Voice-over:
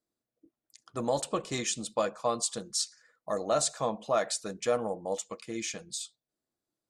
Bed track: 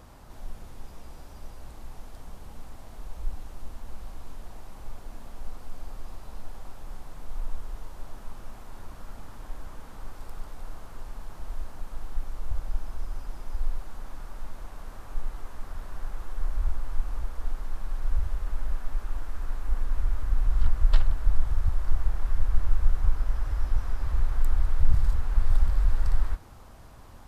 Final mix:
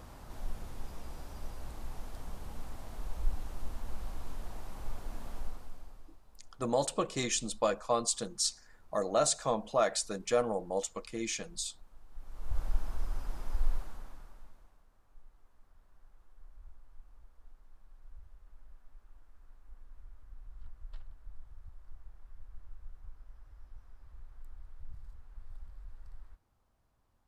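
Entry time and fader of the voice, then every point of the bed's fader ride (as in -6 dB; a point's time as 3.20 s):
5.65 s, -0.5 dB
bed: 5.37 s 0 dB
6.23 s -20 dB
12.07 s -20 dB
12.60 s -1.5 dB
13.75 s -1.5 dB
14.89 s -26 dB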